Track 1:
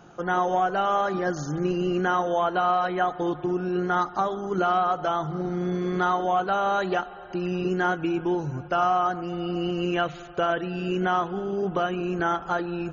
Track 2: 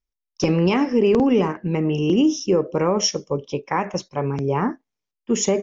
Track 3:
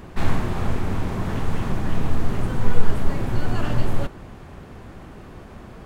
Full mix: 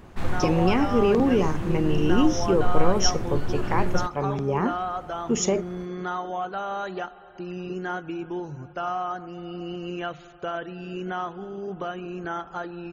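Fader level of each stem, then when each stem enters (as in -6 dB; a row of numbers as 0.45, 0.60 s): -6.5, -3.5, -6.5 dB; 0.05, 0.00, 0.00 s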